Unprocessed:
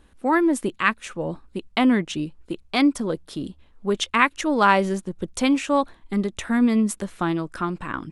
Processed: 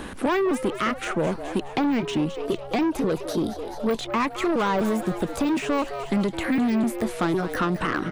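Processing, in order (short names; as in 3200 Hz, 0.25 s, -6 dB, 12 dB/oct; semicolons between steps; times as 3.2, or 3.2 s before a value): trilling pitch shifter +2 st, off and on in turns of 0.253 s; de-esser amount 95%; in parallel at +1 dB: limiter -20 dBFS, peak gain reduction 10 dB; on the sum: soft clip -19 dBFS, distortion -10 dB; on a send: frequency-shifting echo 0.211 s, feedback 53%, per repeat +130 Hz, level -13 dB; on the sum: three-band squash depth 70%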